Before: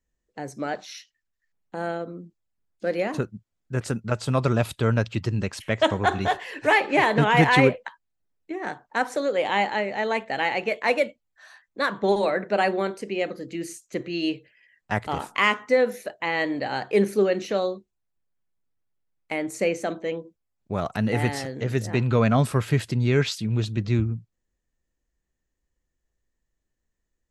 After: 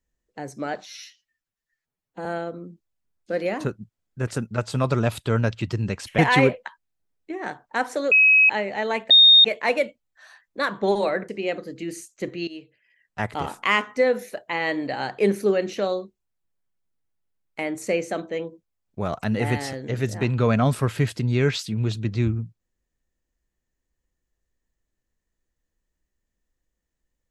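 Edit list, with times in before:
0.86–1.79 stretch 1.5×
5.72–7.39 cut
9.32–9.7 bleep 2550 Hz -11.5 dBFS
10.31–10.65 bleep 3690 Hz -8.5 dBFS
12.49–13.01 cut
14.2–15.1 fade in, from -16.5 dB

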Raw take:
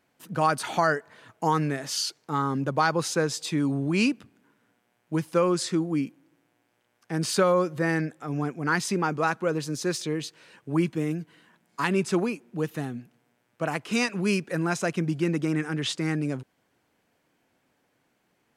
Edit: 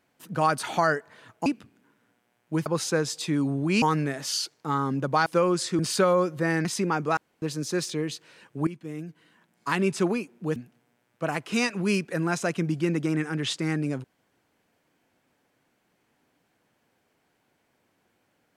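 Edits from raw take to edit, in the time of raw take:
1.46–2.9 swap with 4.06–5.26
5.79–7.18 cut
8.04–8.77 cut
9.29–9.54 room tone
10.79–11.8 fade in, from -15.5 dB
12.68–12.95 cut

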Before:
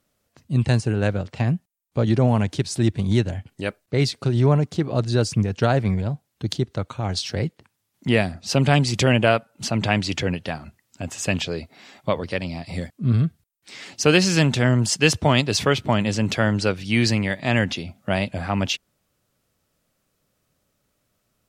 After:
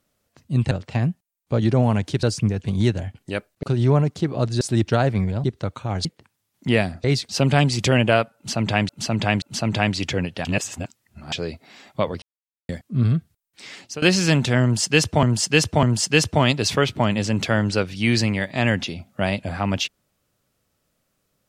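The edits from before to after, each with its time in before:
0.71–1.16 cut
2.68–2.95 swap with 5.17–5.58
3.94–4.19 move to 8.44
6.14–6.58 cut
7.19–7.45 cut
9.51–10.04 loop, 3 plays
10.54–11.41 reverse
12.31–12.78 mute
13.8–14.11 fade out, to -22.5 dB
14.72–15.32 loop, 3 plays

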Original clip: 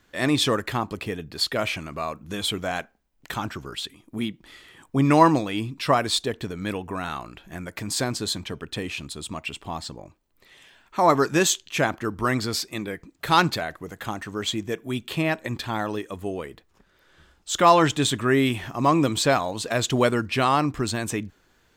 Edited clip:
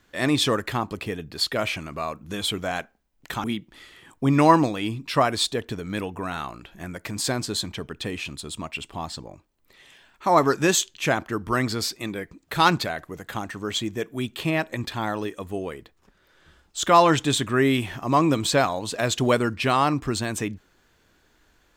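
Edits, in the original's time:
3.44–4.16 cut

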